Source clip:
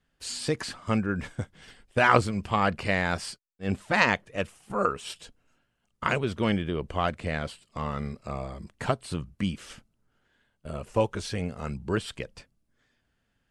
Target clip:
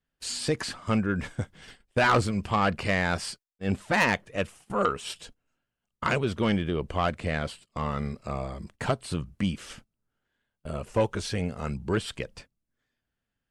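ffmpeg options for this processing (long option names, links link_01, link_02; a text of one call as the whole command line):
ffmpeg -i in.wav -af "agate=range=-12dB:threshold=-51dB:ratio=16:detection=peak,asoftclip=type=tanh:threshold=-16.5dB,volume=2dB" out.wav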